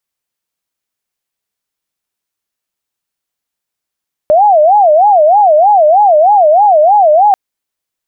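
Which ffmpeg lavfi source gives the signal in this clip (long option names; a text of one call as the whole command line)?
ffmpeg -f lavfi -i "aevalsrc='0.668*sin(2*PI*(720*t-121/(2*PI*3.2)*sin(2*PI*3.2*t)))':duration=3.04:sample_rate=44100" out.wav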